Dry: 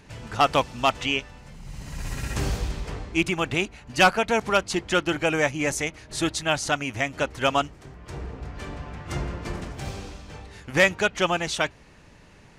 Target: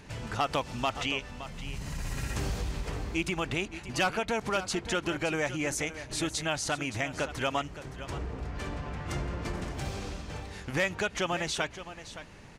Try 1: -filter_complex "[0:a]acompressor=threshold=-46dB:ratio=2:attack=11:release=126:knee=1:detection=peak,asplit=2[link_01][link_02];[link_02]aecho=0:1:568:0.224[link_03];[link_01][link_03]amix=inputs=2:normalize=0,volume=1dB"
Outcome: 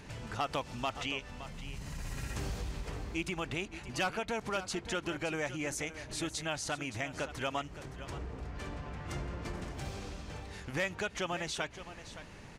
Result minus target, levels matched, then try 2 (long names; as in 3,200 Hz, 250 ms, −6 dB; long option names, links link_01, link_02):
downward compressor: peak gain reduction +5 dB
-filter_complex "[0:a]acompressor=threshold=-35.5dB:ratio=2:attack=11:release=126:knee=1:detection=peak,asplit=2[link_01][link_02];[link_02]aecho=0:1:568:0.224[link_03];[link_01][link_03]amix=inputs=2:normalize=0,volume=1dB"